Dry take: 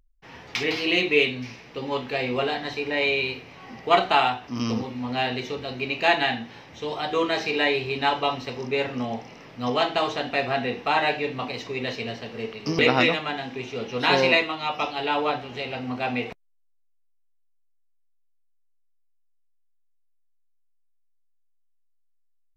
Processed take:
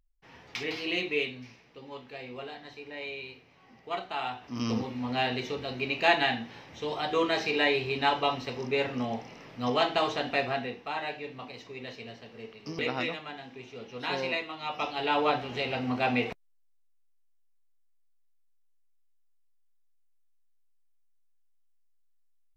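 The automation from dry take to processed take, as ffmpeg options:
-af "volume=16dB,afade=t=out:st=0.99:d=0.82:silence=0.446684,afade=t=in:st=4.15:d=0.61:silence=0.237137,afade=t=out:st=10.36:d=0.43:silence=0.354813,afade=t=in:st=14.43:d=1.02:silence=0.251189"

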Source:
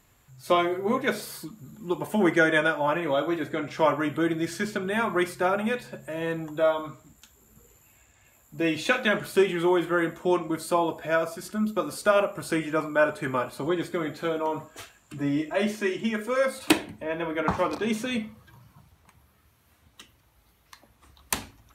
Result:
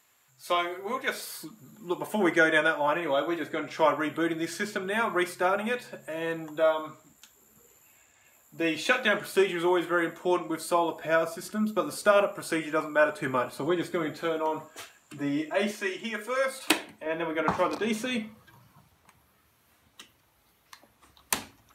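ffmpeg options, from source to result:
-af "asetnsamples=n=441:p=0,asendcmd='1.4 highpass f 340;11 highpass f 140;12.34 highpass f 340;13.2 highpass f 130;14.21 highpass f 280;15.71 highpass f 670;17.06 highpass f 200',highpass=f=1k:p=1"

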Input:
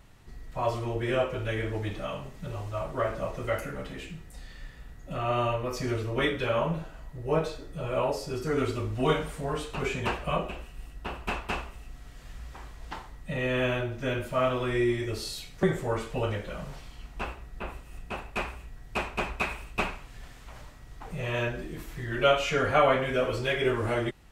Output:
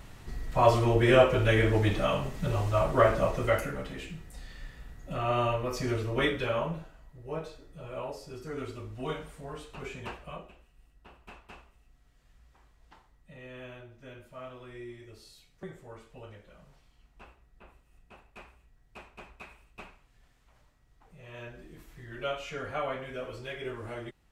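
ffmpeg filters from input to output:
-af "volume=13.5dB,afade=t=out:st=3.04:d=0.8:silence=0.421697,afade=t=out:st=6.28:d=0.71:silence=0.334965,afade=t=out:st=10.03:d=0.53:silence=0.398107,afade=t=in:st=21.21:d=0.5:silence=0.473151"

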